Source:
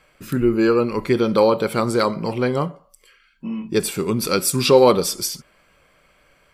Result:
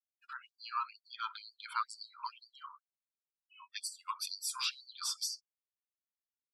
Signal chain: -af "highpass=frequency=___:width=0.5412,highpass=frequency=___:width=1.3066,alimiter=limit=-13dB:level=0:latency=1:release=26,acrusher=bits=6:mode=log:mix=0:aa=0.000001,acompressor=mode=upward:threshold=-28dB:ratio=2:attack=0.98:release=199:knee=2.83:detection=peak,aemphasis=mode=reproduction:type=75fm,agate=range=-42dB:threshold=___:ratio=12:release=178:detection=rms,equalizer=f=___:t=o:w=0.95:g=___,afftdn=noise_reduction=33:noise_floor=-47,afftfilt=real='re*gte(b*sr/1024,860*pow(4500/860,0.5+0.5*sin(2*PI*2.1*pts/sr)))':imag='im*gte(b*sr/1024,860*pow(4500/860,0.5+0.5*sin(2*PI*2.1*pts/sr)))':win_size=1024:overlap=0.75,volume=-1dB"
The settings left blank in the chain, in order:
400, 400, -39dB, 2100, -9.5